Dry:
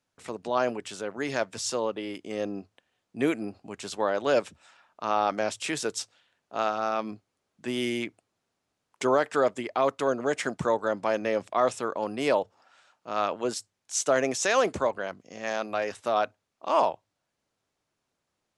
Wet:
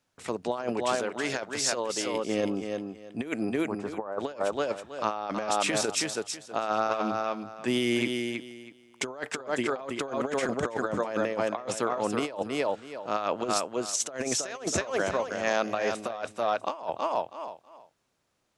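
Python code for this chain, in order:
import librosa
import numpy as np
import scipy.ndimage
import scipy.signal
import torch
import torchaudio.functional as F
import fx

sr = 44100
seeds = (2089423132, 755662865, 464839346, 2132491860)

y = fx.curve_eq(x, sr, hz=(240.0, 1200.0, 3100.0), db=(0, 4, -22), at=(3.61, 4.19), fade=0.02)
y = fx.echo_feedback(y, sr, ms=323, feedback_pct=21, wet_db=-6.0)
y = fx.over_compress(y, sr, threshold_db=-29.0, ratio=-0.5)
y = fx.low_shelf(y, sr, hz=480.0, db=-6.5, at=(0.95, 2.14))
y = F.gain(torch.from_numpy(y), 1.0).numpy()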